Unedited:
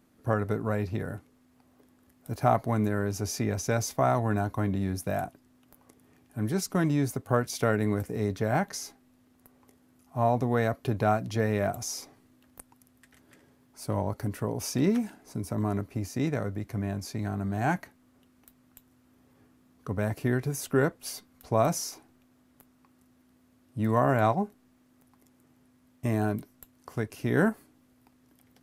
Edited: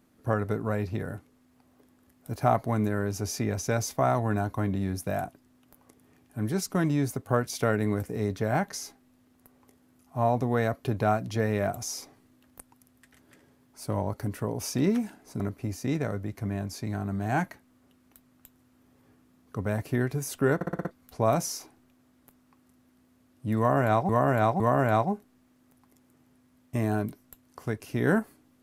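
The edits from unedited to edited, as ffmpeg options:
-filter_complex "[0:a]asplit=10[s0][s1][s2][s3][s4][s5][s6][s7][s8][s9];[s0]atrim=end=15.402[s10];[s1]atrim=start=15.718:end=20.932[s11];[s2]atrim=start=20.868:end=20.932[s12];[s3]atrim=start=20.868:end=20.932[s13];[s4]atrim=start=20.868:end=20.932[s14];[s5]atrim=start=20.868:end=20.932[s15];[s6]atrim=start=20.868:end=20.932[s16];[s7]atrim=start=21.228:end=24.412[s17];[s8]atrim=start=23.898:end=24.412[s18];[s9]atrim=start=23.898[s19];[s10][s11]acrossfade=d=0.004:c1=hsin:c2=hsin[s20];[s20][s12]acrossfade=d=0.004:c1=hsin:c2=hsin[s21];[s21][s13]acrossfade=d=0.004:c1=hsin:c2=hsin[s22];[s22][s14]acrossfade=d=0.004:c1=hsin:c2=hsin[s23];[s23][s15]acrossfade=d=0.004:c1=hsin:c2=hsin[s24];[s24][s16]acrossfade=d=0.004:c1=hsin:c2=hsin[s25];[s25][s17]acrossfade=d=0.004:c1=hsin:c2=hsin[s26];[s26][s18]acrossfade=d=0.004:c1=hsin:c2=hsin[s27];[s27][s19]acrossfade=d=0.004:c1=hsin:c2=hsin"

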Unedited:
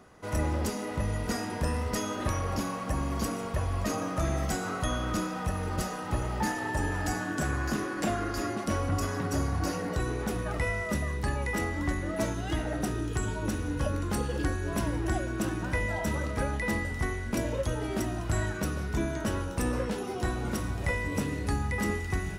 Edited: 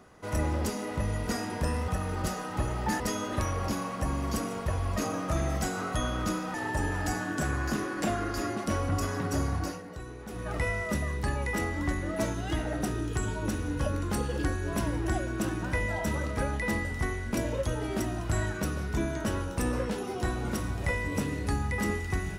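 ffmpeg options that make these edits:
-filter_complex "[0:a]asplit=6[s0][s1][s2][s3][s4][s5];[s0]atrim=end=1.882[s6];[s1]atrim=start=5.418:end=6.542[s7];[s2]atrim=start=1.878:end=5.422[s8];[s3]atrim=start=6.538:end=9.83,asetpts=PTS-STARTPTS,afade=t=out:st=2.992:d=0.3:silence=0.281838[s9];[s4]atrim=start=9.83:end=10.27,asetpts=PTS-STARTPTS,volume=0.282[s10];[s5]atrim=start=10.27,asetpts=PTS-STARTPTS,afade=t=in:d=0.3:silence=0.281838[s11];[s6][s7]acrossfade=d=0.004:c1=hsin:c2=hsin[s12];[s12][s8]acrossfade=d=0.004:c1=hsin:c2=hsin[s13];[s9][s10][s11]concat=n=3:v=0:a=1[s14];[s13][s14]acrossfade=d=0.004:c1=hsin:c2=hsin"

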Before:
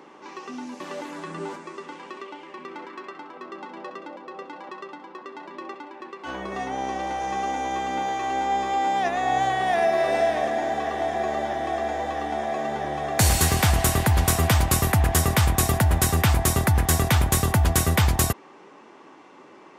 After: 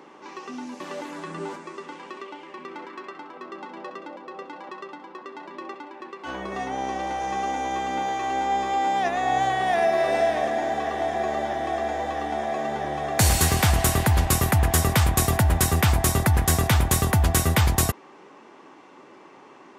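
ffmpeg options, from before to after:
-filter_complex "[0:a]asplit=2[s0][s1];[s0]atrim=end=14.252[s2];[s1]atrim=start=14.658[s3];[s2][s3]acrossfade=d=0.004:c1=hsin:c2=hsin"

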